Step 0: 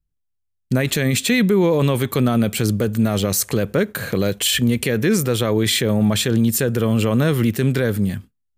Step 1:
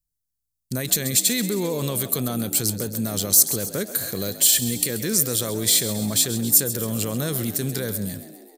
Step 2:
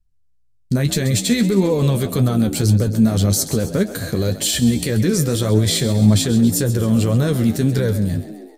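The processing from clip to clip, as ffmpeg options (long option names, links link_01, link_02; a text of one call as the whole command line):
ffmpeg -i in.wav -filter_complex "[0:a]aexciter=amount=4.8:drive=6.6:freq=3900,asplit=2[link_01][link_02];[link_02]asplit=6[link_03][link_04][link_05][link_06][link_07][link_08];[link_03]adelay=133,afreqshift=58,volume=-13dB[link_09];[link_04]adelay=266,afreqshift=116,volume=-17.6dB[link_10];[link_05]adelay=399,afreqshift=174,volume=-22.2dB[link_11];[link_06]adelay=532,afreqshift=232,volume=-26.7dB[link_12];[link_07]adelay=665,afreqshift=290,volume=-31.3dB[link_13];[link_08]adelay=798,afreqshift=348,volume=-35.9dB[link_14];[link_09][link_10][link_11][link_12][link_13][link_14]amix=inputs=6:normalize=0[link_15];[link_01][link_15]amix=inputs=2:normalize=0,volume=-9.5dB" out.wav
ffmpeg -i in.wav -af "aemphasis=mode=reproduction:type=bsi,flanger=delay=9.1:depth=4.7:regen=35:speed=1.8:shape=triangular,volume=9dB" out.wav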